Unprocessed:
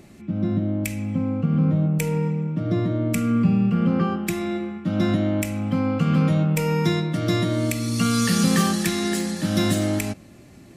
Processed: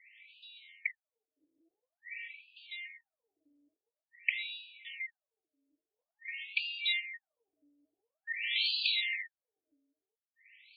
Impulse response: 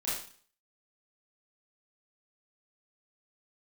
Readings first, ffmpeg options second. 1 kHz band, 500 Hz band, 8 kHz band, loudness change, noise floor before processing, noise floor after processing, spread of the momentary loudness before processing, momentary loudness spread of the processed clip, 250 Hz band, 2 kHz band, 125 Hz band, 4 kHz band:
under -40 dB, under -40 dB, under -40 dB, -12.0 dB, -46 dBFS, under -85 dBFS, 7 LU, 20 LU, under -40 dB, -4.0 dB, under -40 dB, -3.5 dB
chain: -af "afftfilt=real='re*(1-between(b*sr/4096,160,1800))':imag='im*(1-between(b*sr/4096,160,1800))':win_size=4096:overlap=0.75,afftfilt=real='re*between(b*sr/1024,400*pow(3500/400,0.5+0.5*sin(2*PI*0.48*pts/sr))/1.41,400*pow(3500/400,0.5+0.5*sin(2*PI*0.48*pts/sr))*1.41)':imag='im*between(b*sr/1024,400*pow(3500/400,0.5+0.5*sin(2*PI*0.48*pts/sr))/1.41,400*pow(3500/400,0.5+0.5*sin(2*PI*0.48*pts/sr))*1.41)':win_size=1024:overlap=0.75,volume=1.5"

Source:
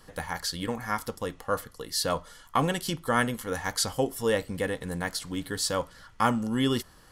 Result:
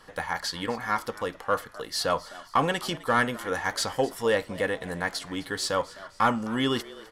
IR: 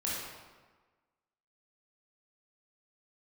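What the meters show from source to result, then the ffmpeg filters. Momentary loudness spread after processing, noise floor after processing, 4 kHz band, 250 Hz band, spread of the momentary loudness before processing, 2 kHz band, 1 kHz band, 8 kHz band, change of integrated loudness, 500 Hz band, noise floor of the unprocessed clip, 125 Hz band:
7 LU, -51 dBFS, +1.0 dB, -1.5 dB, 7 LU, +3.5 dB, +3.0 dB, -3.5 dB, +1.0 dB, +2.0 dB, -54 dBFS, -3.5 dB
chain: -filter_complex "[0:a]asplit=2[s0][s1];[s1]highpass=f=720:p=1,volume=3.55,asoftclip=type=tanh:threshold=0.316[s2];[s0][s2]amix=inputs=2:normalize=0,lowpass=f=2600:p=1,volume=0.501,asplit=4[s3][s4][s5][s6];[s4]adelay=258,afreqshift=99,volume=0.112[s7];[s5]adelay=516,afreqshift=198,volume=0.0473[s8];[s6]adelay=774,afreqshift=297,volume=0.0197[s9];[s3][s7][s8][s9]amix=inputs=4:normalize=0"

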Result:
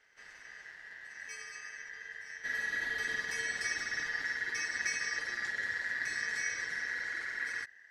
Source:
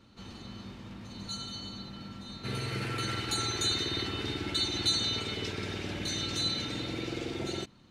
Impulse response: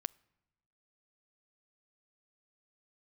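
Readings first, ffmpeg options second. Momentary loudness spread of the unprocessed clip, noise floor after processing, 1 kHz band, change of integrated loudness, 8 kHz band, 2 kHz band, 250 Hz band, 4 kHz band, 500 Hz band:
16 LU, -56 dBFS, -8.5 dB, -3.0 dB, -4.0 dB, +9.5 dB, -21.5 dB, -14.5 dB, -14.0 dB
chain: -filter_complex "[0:a]asubboost=boost=7:cutoff=160,aeval=exprs='val(0)*sin(2*PI*1800*n/s)':c=same,acrossover=split=7300[s0][s1];[s1]acompressor=threshold=0.00355:ratio=4:attack=1:release=60[s2];[s0][s2]amix=inputs=2:normalize=0,volume=0.531"

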